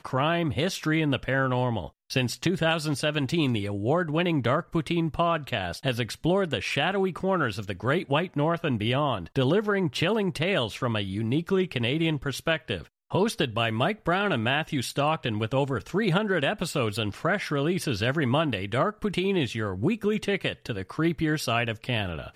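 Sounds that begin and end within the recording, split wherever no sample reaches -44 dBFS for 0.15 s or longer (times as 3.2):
2.1–12.87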